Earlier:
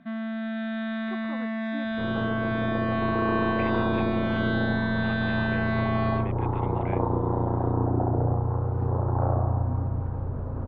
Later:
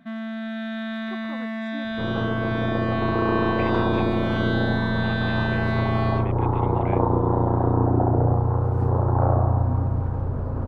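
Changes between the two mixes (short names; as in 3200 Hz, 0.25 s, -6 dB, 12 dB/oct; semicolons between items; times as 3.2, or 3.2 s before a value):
second sound +4.5 dB; master: remove air absorption 180 m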